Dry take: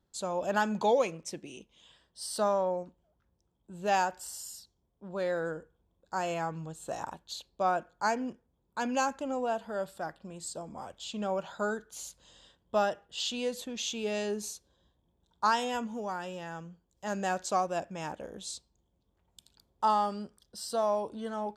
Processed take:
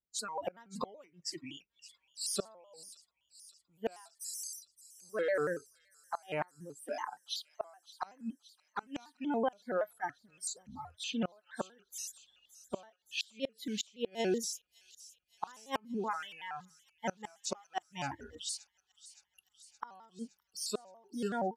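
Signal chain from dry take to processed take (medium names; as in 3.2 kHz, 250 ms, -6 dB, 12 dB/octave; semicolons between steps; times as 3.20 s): 6.42–8.83 s: high-pass 190 Hz 24 dB/octave; spectral noise reduction 27 dB; inverted gate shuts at -25 dBFS, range -31 dB; feedback echo behind a high-pass 568 ms, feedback 66%, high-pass 4.2 kHz, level -15 dB; vibrato with a chosen wave square 5.3 Hz, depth 160 cents; trim +2.5 dB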